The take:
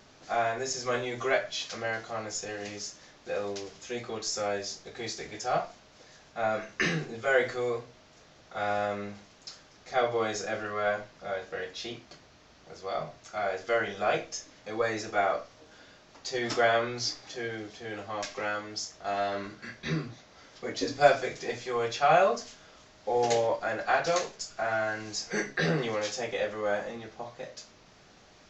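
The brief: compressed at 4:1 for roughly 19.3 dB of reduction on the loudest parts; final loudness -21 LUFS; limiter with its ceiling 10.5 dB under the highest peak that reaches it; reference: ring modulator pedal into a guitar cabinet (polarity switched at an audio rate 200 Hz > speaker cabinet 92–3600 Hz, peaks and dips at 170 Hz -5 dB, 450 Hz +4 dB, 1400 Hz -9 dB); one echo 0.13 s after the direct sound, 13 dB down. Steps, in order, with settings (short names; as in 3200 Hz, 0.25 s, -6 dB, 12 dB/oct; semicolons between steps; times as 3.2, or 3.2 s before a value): compressor 4:1, threshold -38 dBFS; limiter -31.5 dBFS; echo 0.13 s -13 dB; polarity switched at an audio rate 200 Hz; speaker cabinet 92–3600 Hz, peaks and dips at 170 Hz -5 dB, 450 Hz +4 dB, 1400 Hz -9 dB; gain +22.5 dB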